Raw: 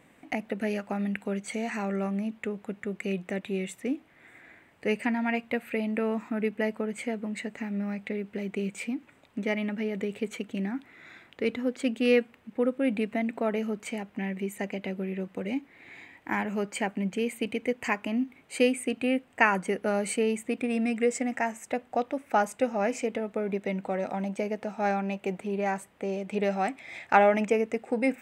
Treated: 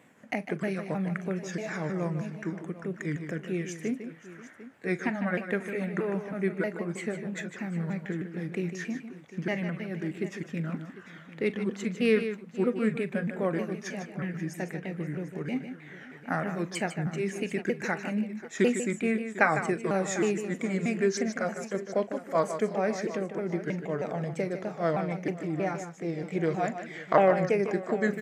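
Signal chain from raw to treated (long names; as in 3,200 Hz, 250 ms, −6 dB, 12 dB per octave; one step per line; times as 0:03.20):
pitch shifter swept by a sawtooth −5 semitones, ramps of 316 ms
high-pass filter 120 Hz
multi-tap delay 41/152/535/749 ms −16.5/−9.5/−19/−16 dB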